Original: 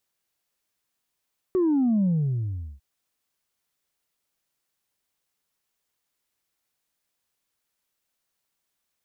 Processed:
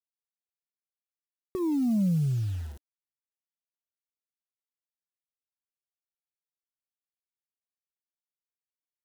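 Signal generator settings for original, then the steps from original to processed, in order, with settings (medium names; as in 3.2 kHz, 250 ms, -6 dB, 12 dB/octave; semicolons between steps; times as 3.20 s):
sub drop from 380 Hz, over 1.25 s, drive 0.5 dB, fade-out 0.76 s, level -19 dB
peaking EQ 320 Hz -4.5 dB 1.4 oct; word length cut 8-bit, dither none; Shepard-style phaser rising 0.56 Hz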